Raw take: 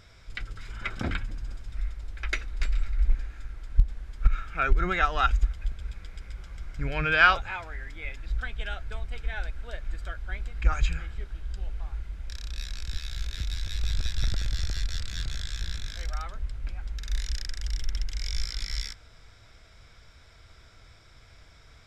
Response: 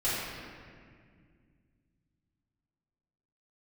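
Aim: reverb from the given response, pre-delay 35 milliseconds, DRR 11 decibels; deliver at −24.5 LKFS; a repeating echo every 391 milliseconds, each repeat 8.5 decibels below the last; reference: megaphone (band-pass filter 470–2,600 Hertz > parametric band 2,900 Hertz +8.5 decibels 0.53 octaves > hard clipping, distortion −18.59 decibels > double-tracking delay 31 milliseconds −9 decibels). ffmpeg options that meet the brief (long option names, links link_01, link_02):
-filter_complex "[0:a]aecho=1:1:391|782|1173|1564:0.376|0.143|0.0543|0.0206,asplit=2[link_01][link_02];[1:a]atrim=start_sample=2205,adelay=35[link_03];[link_02][link_03]afir=irnorm=-1:irlink=0,volume=-21dB[link_04];[link_01][link_04]amix=inputs=2:normalize=0,highpass=470,lowpass=2600,equalizer=frequency=2900:width_type=o:width=0.53:gain=8.5,asoftclip=type=hard:threshold=-11.5dB,asplit=2[link_05][link_06];[link_06]adelay=31,volume=-9dB[link_07];[link_05][link_07]amix=inputs=2:normalize=0,volume=6.5dB"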